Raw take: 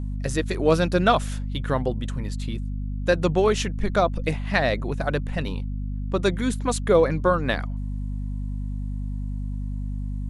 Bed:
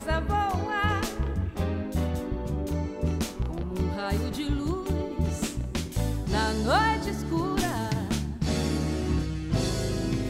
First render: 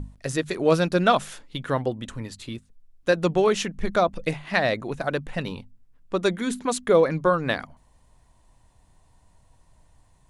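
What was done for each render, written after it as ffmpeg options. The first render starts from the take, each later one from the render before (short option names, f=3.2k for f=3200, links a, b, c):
-af "bandreject=f=50:t=h:w=6,bandreject=f=100:t=h:w=6,bandreject=f=150:t=h:w=6,bandreject=f=200:t=h:w=6,bandreject=f=250:t=h:w=6"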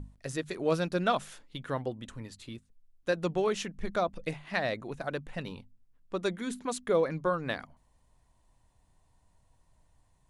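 -af "volume=-8.5dB"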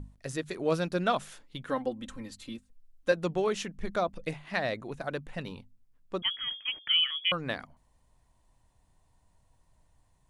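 -filter_complex "[0:a]asettb=1/sr,asplit=3[a][b][c];[a]atrim=end=1.694[d];[b]atrim=start=1.69:end=3.12,asetpts=PTS-STARTPTS,afade=t=in:d=0.004:c=qsin,afade=t=out:st=1.426:d=0.004:c=qsin,aecho=1:1:3.8:0.78,atrim=end_sample=63063[e];[c]atrim=start=3.116[f];[d][e]acrossfade=d=0.004:c1=hsin:c2=qsin[g];[g][f]acrossfade=d=0.004:c1=qsin:c2=hsin,asettb=1/sr,asplit=3[h][i][j];[h]atrim=end=6.224[k];[i]atrim=start=6.22:end=7.32,asetpts=PTS-STARTPTS,afade=t=in:d=0.004:c=qsin,afade=t=out:st=1.096:d=0.004:c=qsin,lowpass=f=3k:t=q:w=0.5098,lowpass=f=3k:t=q:w=0.6013,lowpass=f=3k:t=q:w=0.9,lowpass=f=3k:t=q:w=2.563,afreqshift=-3500[l];[j]atrim=start=7.316[m];[k][l]acrossfade=d=0.004:c1=hsin:c2=qsin[n];[n][m]acrossfade=d=0.004:c1=qsin:c2=hsin"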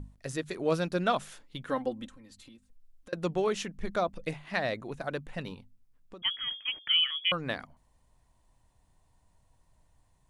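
-filter_complex "[0:a]asettb=1/sr,asplit=3[a][b][c];[a]atrim=end=2.074[d];[b]atrim=start=2.07:end=3.13,asetpts=PTS-STARTPTS,afade=t=in:d=0.004:c=qsin,afade=t=out:st=1.056:d=0.004:c=qsin,acompressor=threshold=-49dB:ratio=10:attack=3.2:release=140:knee=1:detection=peak[e];[c]atrim=start=3.126[f];[d][e]acrossfade=d=0.004:c1=hsin:c2=qsin[g];[g][f]acrossfade=d=0.004:c1=qsin:c2=hsin,asettb=1/sr,asplit=3[h][i][j];[h]atrim=end=5.544[k];[i]atrim=start=5.54:end=6.23,asetpts=PTS-STARTPTS,afade=t=in:d=0.004:c=qsin,afade=t=out:st=0.686:d=0.004:c=qsin,acompressor=threshold=-44dB:ratio=6:attack=3.2:release=140:knee=1:detection=peak[l];[j]atrim=start=6.226[m];[k][l]acrossfade=d=0.004:c1=hsin:c2=qsin[n];[n][m]acrossfade=d=0.004:c1=qsin:c2=hsin"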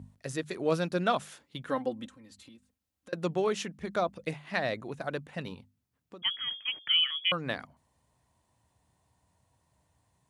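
-af "highpass=f=74:w=0.5412,highpass=f=74:w=1.3066"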